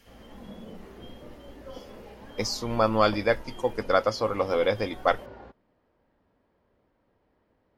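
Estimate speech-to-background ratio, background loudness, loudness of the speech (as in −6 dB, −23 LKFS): 19.5 dB, −46.0 LKFS, −26.5 LKFS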